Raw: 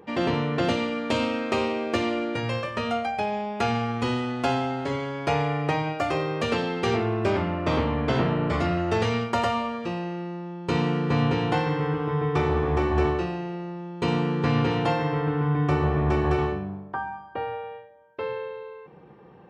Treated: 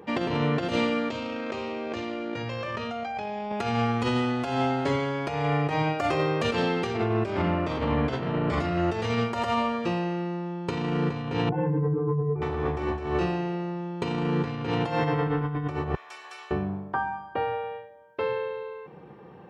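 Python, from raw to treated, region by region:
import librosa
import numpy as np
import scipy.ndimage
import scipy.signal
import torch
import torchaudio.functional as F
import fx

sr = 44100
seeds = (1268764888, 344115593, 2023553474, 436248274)

y = fx.chain(x, sr, fx.steep_lowpass(hz=7300.0, slope=36),
    fx.env_flatten(amount_pct=100), at=(1.09, 3.52))
y = fx.chain(y, sr, fx.spec_expand(power=2.2),
    fx.lowpass(hz=2300.0, slope=24),
    fx.doubler(ms=29.0, db=-6.0), at=(11.49, 12.42))
y = fx.chain(y, sr, fx.highpass(hz=680.0, slope=12),
    fx.differentiator(), at=(15.95, 16.51))
y = scipy.signal.sosfilt(scipy.signal.butter(2, 56.0, 'highpass', fs=sr, output='sos'), y)
y = fx.over_compress(y, sr, threshold_db=-26.0, ratio=-0.5)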